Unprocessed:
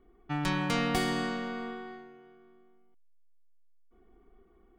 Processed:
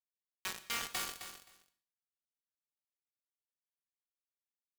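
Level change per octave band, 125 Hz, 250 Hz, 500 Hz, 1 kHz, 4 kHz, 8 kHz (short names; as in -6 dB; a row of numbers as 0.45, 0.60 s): -28.0, -27.5, -20.5, -13.5, -5.0, +1.5 dB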